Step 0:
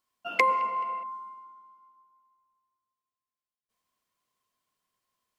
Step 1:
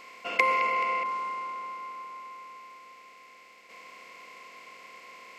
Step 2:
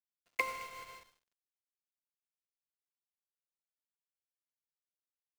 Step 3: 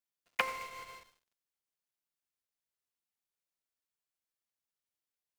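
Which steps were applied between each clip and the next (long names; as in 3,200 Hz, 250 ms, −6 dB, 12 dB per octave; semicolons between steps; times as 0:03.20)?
compressor on every frequency bin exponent 0.4; parametric band 2,400 Hz +3.5 dB 0.53 octaves; level −3.5 dB
centre clipping without the shift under −27.5 dBFS; expander for the loud parts 2.5 to 1, over −43 dBFS; level −8 dB
highs frequency-modulated by the lows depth 0.24 ms; level +1.5 dB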